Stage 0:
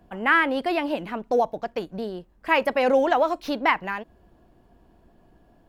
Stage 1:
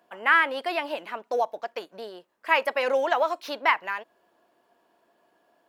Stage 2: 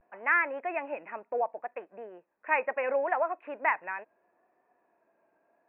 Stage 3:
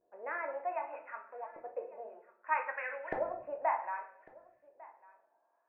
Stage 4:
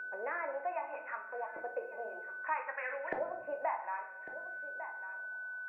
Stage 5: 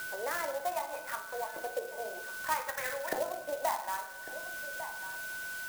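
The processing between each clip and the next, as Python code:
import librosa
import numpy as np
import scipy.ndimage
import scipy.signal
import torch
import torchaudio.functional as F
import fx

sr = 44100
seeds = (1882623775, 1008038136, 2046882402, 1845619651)

y1 = scipy.signal.sosfilt(scipy.signal.butter(2, 600.0, 'highpass', fs=sr, output='sos'), x)
y1 = fx.notch(y1, sr, hz=770.0, q=12.0)
y2 = fx.vibrato(y1, sr, rate_hz=0.71, depth_cents=76.0)
y2 = scipy.signal.sosfilt(scipy.signal.cheby1(6, 3, 2600.0, 'lowpass', fs=sr, output='sos'), y2)
y2 = y2 * librosa.db_to_amplitude(-4.0)
y3 = fx.filter_lfo_bandpass(y2, sr, shape='saw_up', hz=0.64, low_hz=400.0, high_hz=2300.0, q=2.8)
y3 = y3 + 10.0 ** (-22.0 / 20.0) * np.pad(y3, (int(1150 * sr / 1000.0), 0))[:len(y3)]
y3 = fx.room_shoebox(y3, sr, seeds[0], volume_m3=110.0, walls='mixed', distance_m=0.56)
y4 = y3 + 10.0 ** (-51.0 / 20.0) * np.sin(2.0 * np.pi * 1500.0 * np.arange(len(y3)) / sr)
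y4 = fx.band_squash(y4, sr, depth_pct=70)
y5 = fx.clock_jitter(y4, sr, seeds[1], jitter_ms=0.053)
y5 = y5 * librosa.db_to_amplitude(3.0)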